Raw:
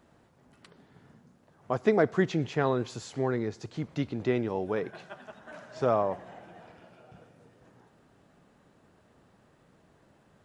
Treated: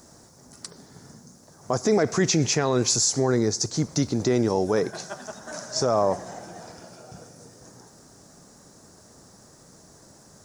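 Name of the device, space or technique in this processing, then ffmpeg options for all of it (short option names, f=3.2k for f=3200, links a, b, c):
over-bright horn tweeter: -filter_complex "[0:a]highshelf=f=4.1k:t=q:w=3:g=12.5,alimiter=limit=-21dB:level=0:latency=1:release=38,asettb=1/sr,asplit=3[a][b][c];[a]atrim=end=1.924[d];[b]atrim=start=1.92:end=2.96,asetpts=PTS-STARTPTS,afade=t=in:d=0.004:c=qsin,afade=t=out:st=1.036:d=0.004:c=qsin,equalizer=f=2.5k:t=o:w=0.63:g=10.5[e];[c]atrim=start=2.956[f];[d][e]acrossfade=d=0.004:c1=hsin:c2=qsin[g];[g][f]acrossfade=d=0.004:c1=qsin:c2=hsin,volume=9dB"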